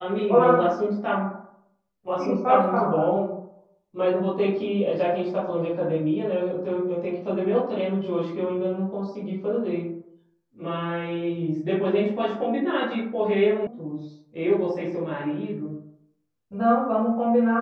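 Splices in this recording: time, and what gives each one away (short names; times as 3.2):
13.67 sound cut off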